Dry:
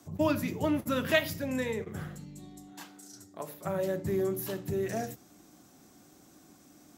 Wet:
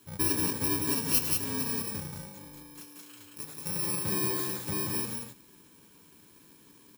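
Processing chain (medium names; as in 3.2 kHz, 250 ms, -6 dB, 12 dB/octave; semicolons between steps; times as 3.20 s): bit-reversed sample order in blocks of 64 samples; loudspeakers at several distances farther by 36 m -11 dB, 62 m -3 dB; trim -1.5 dB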